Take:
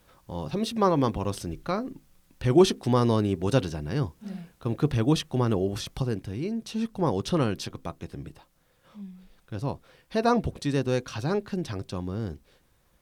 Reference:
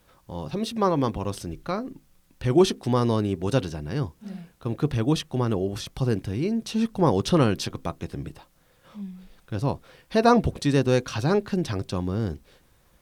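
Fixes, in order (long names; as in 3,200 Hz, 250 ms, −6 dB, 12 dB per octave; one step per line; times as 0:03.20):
level 0 dB, from 0:06.02 +5 dB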